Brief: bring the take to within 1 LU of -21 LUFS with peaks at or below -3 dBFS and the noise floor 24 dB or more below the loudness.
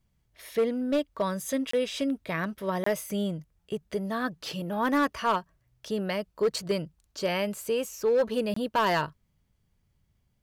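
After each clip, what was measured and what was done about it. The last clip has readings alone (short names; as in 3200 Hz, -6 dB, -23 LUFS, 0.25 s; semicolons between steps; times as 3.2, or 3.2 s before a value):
clipped 0.8%; flat tops at -19.0 dBFS; dropouts 3; longest dropout 24 ms; loudness -29.5 LUFS; peak -19.0 dBFS; loudness target -21.0 LUFS
-> clip repair -19 dBFS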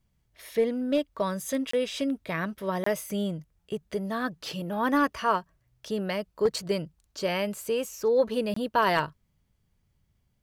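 clipped 0.0%; dropouts 3; longest dropout 24 ms
-> interpolate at 1.71/2.84/8.54, 24 ms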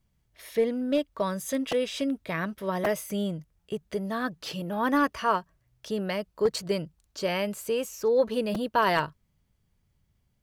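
dropouts 0; loudness -29.0 LUFS; peak -10.0 dBFS; loudness target -21.0 LUFS
-> gain +8 dB; limiter -3 dBFS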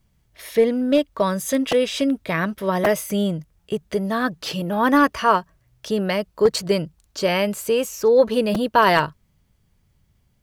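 loudness -21.0 LUFS; peak -3.0 dBFS; noise floor -64 dBFS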